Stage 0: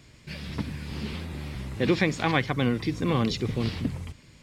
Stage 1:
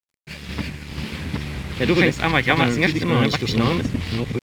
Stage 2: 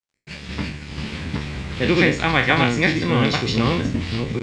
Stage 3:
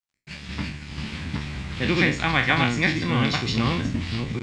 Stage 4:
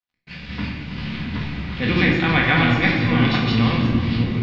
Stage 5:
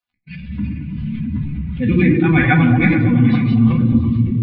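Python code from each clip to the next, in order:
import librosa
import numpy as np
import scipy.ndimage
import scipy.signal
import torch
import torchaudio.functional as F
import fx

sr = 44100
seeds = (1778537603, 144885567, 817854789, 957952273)

y1 = fx.reverse_delay(x, sr, ms=488, wet_db=0)
y1 = fx.peak_eq(y1, sr, hz=2300.0, db=4.5, octaves=1.5)
y1 = np.sign(y1) * np.maximum(np.abs(y1) - 10.0 ** (-43.0 / 20.0), 0.0)
y1 = y1 * librosa.db_to_amplitude(4.0)
y2 = fx.spec_trails(y1, sr, decay_s=0.36)
y2 = scipy.signal.sosfilt(scipy.signal.butter(4, 8300.0, 'lowpass', fs=sr, output='sos'), y2)
y2 = y2 * librosa.db_to_amplitude(-1.0)
y3 = fx.peak_eq(y2, sr, hz=460.0, db=-7.0, octaves=0.82)
y3 = y3 * librosa.db_to_amplitude(-2.5)
y4 = scipy.signal.sosfilt(scipy.signal.butter(4, 4500.0, 'lowpass', fs=sr, output='sos'), y3)
y4 = y4 + 10.0 ** (-13.5 / 20.0) * np.pad(y4, (int(323 * sr / 1000.0), 0))[:len(y4)]
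y4 = fx.room_shoebox(y4, sr, seeds[0], volume_m3=1600.0, walls='mixed', distance_m=1.9)
y5 = fx.spec_expand(y4, sr, power=2.1)
y5 = fx.notch(y5, sr, hz=1900.0, q=13.0)
y5 = fx.echo_stepped(y5, sr, ms=111, hz=370.0, octaves=0.7, feedback_pct=70, wet_db=-2.5)
y5 = y5 * librosa.db_to_amplitude(4.5)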